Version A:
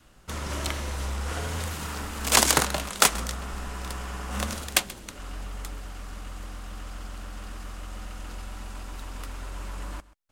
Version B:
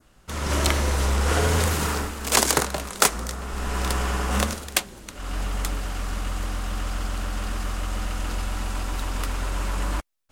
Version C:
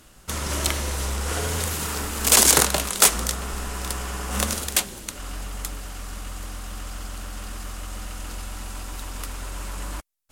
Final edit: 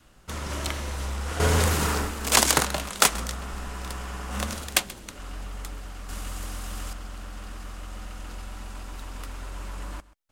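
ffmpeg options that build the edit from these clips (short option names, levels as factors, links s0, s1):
-filter_complex "[0:a]asplit=3[s0][s1][s2];[s0]atrim=end=1.402[s3];[1:a]atrim=start=1.398:end=2.322[s4];[s1]atrim=start=2.318:end=6.092[s5];[2:a]atrim=start=6.088:end=6.932[s6];[s2]atrim=start=6.928[s7];[s3][s4]acrossfade=d=0.004:c1=hsin:c2=hsin[s8];[s8][s5]acrossfade=d=0.004:c1=hsin:c2=hsin[s9];[s9][s6]acrossfade=d=0.004:c1=hsin:c2=hsin[s10];[s10][s7]acrossfade=d=0.004:c1=hsin:c2=hsin"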